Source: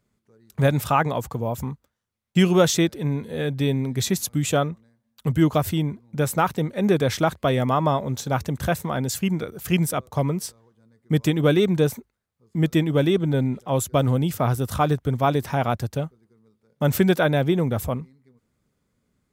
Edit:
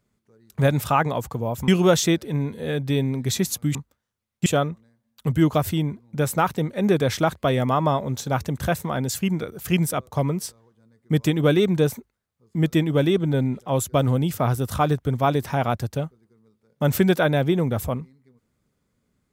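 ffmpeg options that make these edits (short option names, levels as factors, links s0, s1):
-filter_complex "[0:a]asplit=4[s0][s1][s2][s3];[s0]atrim=end=1.682[s4];[s1]atrim=start=2.388:end=4.462[s5];[s2]atrim=start=1.678:end=2.392[s6];[s3]atrim=start=4.458[s7];[s4][s5]acrossfade=d=0.004:c1=hsin:c2=hsin[s8];[s8][s6]acrossfade=d=0.004:c1=hsin:c2=hsin[s9];[s9][s7]acrossfade=d=0.004:c1=hsin:c2=hsin"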